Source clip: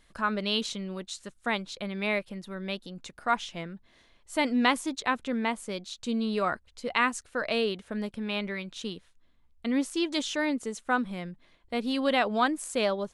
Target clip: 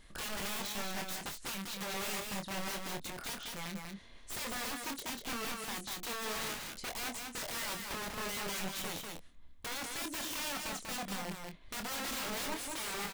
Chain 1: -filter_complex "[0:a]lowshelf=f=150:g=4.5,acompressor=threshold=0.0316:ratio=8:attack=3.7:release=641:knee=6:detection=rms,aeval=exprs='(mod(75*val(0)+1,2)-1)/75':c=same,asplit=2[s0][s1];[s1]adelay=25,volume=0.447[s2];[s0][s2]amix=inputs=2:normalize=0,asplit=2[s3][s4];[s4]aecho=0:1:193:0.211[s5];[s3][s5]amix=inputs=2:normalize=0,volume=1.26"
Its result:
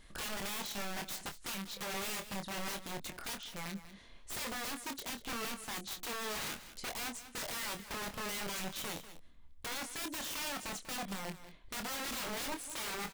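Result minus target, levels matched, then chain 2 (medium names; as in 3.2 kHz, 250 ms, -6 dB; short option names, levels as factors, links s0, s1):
echo-to-direct -9.5 dB
-filter_complex "[0:a]lowshelf=f=150:g=4.5,acompressor=threshold=0.0316:ratio=8:attack=3.7:release=641:knee=6:detection=rms,aeval=exprs='(mod(75*val(0)+1,2)-1)/75':c=same,asplit=2[s0][s1];[s1]adelay=25,volume=0.447[s2];[s0][s2]amix=inputs=2:normalize=0,asplit=2[s3][s4];[s4]aecho=0:1:193:0.631[s5];[s3][s5]amix=inputs=2:normalize=0,volume=1.26"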